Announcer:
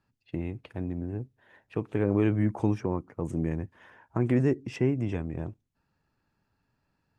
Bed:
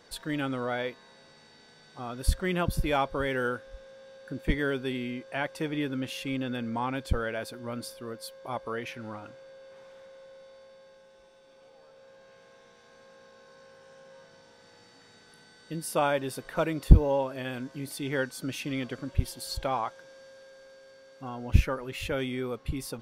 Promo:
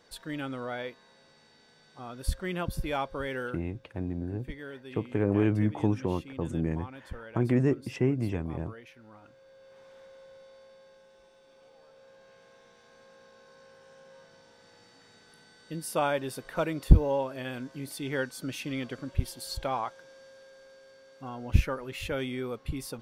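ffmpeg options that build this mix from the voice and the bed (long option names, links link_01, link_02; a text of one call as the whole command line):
ffmpeg -i stem1.wav -i stem2.wav -filter_complex "[0:a]adelay=3200,volume=-0.5dB[link_01];[1:a]volume=7.5dB,afade=type=out:start_time=3.38:duration=0.24:silence=0.354813,afade=type=in:start_time=9.1:duration=0.93:silence=0.251189[link_02];[link_01][link_02]amix=inputs=2:normalize=0" out.wav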